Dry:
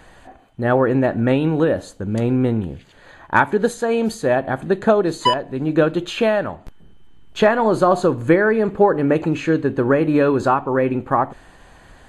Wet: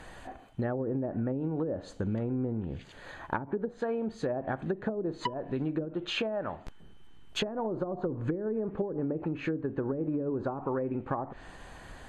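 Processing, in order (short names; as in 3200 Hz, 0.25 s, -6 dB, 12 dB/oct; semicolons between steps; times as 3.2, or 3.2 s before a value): treble ducked by the level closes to 370 Hz, closed at -11 dBFS; 5.85–8.06 low shelf 500 Hz -5 dB; compressor 10:1, threshold -27 dBFS, peak gain reduction 16.5 dB; gain -1.5 dB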